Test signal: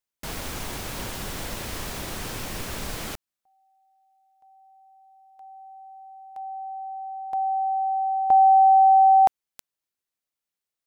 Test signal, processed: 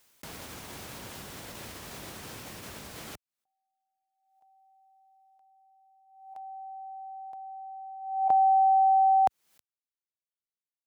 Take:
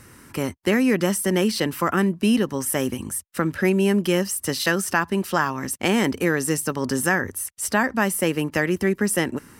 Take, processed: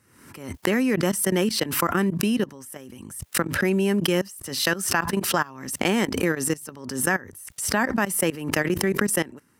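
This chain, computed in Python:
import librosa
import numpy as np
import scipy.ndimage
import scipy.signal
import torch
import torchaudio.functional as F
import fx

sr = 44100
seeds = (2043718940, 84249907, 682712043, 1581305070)

y = fx.level_steps(x, sr, step_db=21)
y = scipy.signal.sosfilt(scipy.signal.butter(2, 77.0, 'highpass', fs=sr, output='sos'), y)
y = fx.pre_swell(y, sr, db_per_s=67.0)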